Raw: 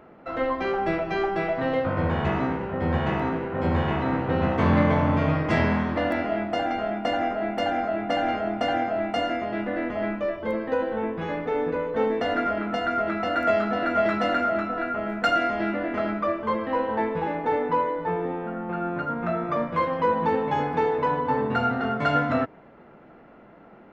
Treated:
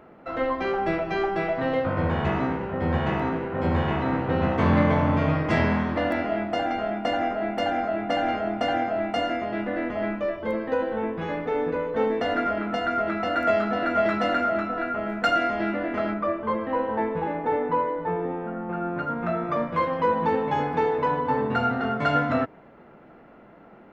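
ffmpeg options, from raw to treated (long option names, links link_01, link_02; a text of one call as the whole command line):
ffmpeg -i in.wav -filter_complex "[0:a]asettb=1/sr,asplit=3[link_01][link_02][link_03];[link_01]atrim=end=16.144[link_04];[link_02]atrim=start=16.14:end=18.98,asetpts=PTS-STARTPTS,afade=type=in:duration=0.004:curve=qsin,afade=type=out:start_time=2.836:duration=0.004:curve=qsin,lowpass=frequency=2200:poles=1[link_05];[link_03]atrim=start=18.976[link_06];[link_04][link_05]acrossfade=duration=0.004:curve1=hsin:curve2=qsin[link_07];[link_07][link_06]acrossfade=duration=0.004:curve1=qsin:curve2=hsin" out.wav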